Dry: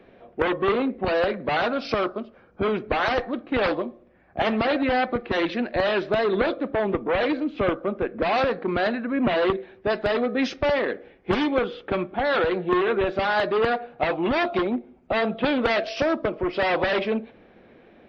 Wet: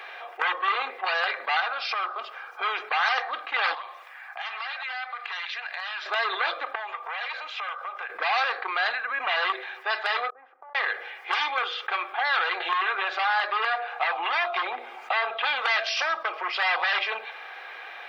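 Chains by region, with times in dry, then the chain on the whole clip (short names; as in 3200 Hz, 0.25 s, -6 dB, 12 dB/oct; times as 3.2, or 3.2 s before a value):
1.6–2.19 compressor 2.5:1, threshold -26 dBFS + air absorption 160 m
3.74–6.06 HPF 880 Hz + compressor, threshold -42 dBFS
6.75–8.1 HPF 510 Hz 24 dB/oct + compressor 3:1, threshold -41 dBFS
10.3–10.75 LPF 1100 Hz 24 dB/oct + flipped gate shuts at -31 dBFS, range -38 dB
12.6–15.47 LPF 3400 Hz 6 dB/oct + notches 60/120/180/240/300/360/420/480/540/600 Hz + three-band squash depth 100%
whole clip: HPF 900 Hz 24 dB/oct; comb 2.5 ms, depth 42%; fast leveller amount 50%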